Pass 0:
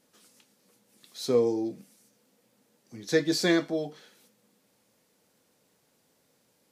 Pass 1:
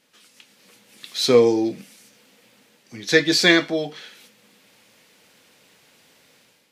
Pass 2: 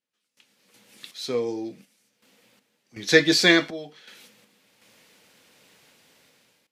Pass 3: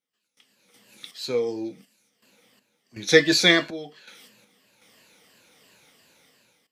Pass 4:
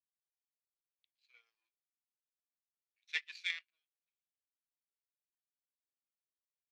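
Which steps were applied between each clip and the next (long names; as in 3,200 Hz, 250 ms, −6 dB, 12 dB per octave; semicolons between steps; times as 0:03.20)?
parametric band 2,600 Hz +11.5 dB 1.9 octaves; automatic gain control gain up to 9 dB
sample-and-hold tremolo 2.7 Hz, depth 95%
rippled gain that drifts along the octave scale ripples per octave 1.4, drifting −2.9 Hz, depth 9 dB; level −1 dB
power curve on the samples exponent 2; four-pole ladder band-pass 2,700 Hz, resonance 60%; level −4 dB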